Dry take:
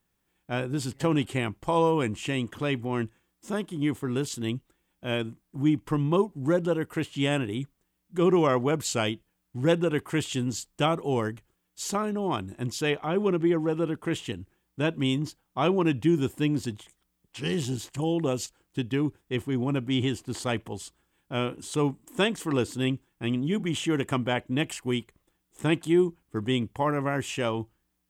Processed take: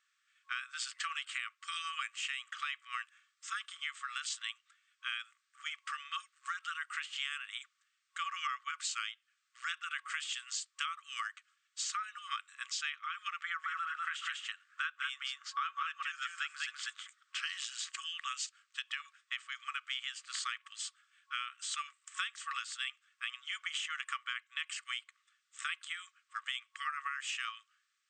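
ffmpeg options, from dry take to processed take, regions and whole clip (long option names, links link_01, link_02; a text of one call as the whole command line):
ffmpeg -i in.wav -filter_complex "[0:a]asettb=1/sr,asplit=3[link_01][link_02][link_03];[link_01]atrim=end=13.444[link_04];[link_02]atrim=start=13.44:end=17.46,asetpts=PTS-STARTPTS,afade=type=in:duration=0.004:curve=qsin,afade=type=out:start_time=4.016:duration=0.004:curve=qsin,equalizer=frequency=1400:width_type=o:width=0.7:gain=9.5,aecho=1:1:191|198:0.141|0.708,atrim=end_sample=177282[link_05];[link_03]atrim=start=17.456[link_06];[link_04][link_05]acrossfade=duration=0.004:curve1=hsin:curve2=qsin[link_07];[link_07][link_06]acrossfade=duration=0.004:curve1=qsin:curve2=hsin,afftfilt=real='re*between(b*sr/4096,1100,8700)':imag='im*between(b*sr/4096,1100,8700)':win_size=4096:overlap=0.75,highshelf=frequency=6100:gain=-7,acompressor=threshold=-42dB:ratio=6,volume=6.5dB" out.wav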